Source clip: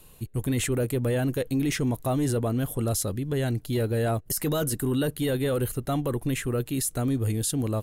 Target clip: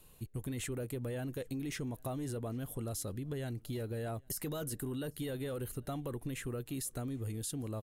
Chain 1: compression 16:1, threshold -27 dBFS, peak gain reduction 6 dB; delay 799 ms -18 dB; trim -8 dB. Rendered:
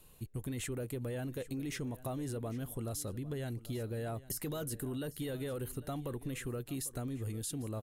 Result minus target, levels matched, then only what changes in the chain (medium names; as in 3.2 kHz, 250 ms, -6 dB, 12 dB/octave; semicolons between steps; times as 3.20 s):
echo-to-direct +12 dB
change: delay 799 ms -30 dB